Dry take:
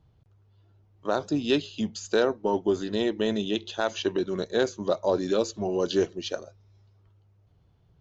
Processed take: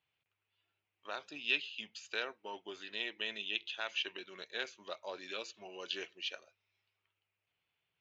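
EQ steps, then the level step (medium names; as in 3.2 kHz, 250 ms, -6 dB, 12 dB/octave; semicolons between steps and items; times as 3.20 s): band-pass filter 2.5 kHz, Q 3.7; +4.0 dB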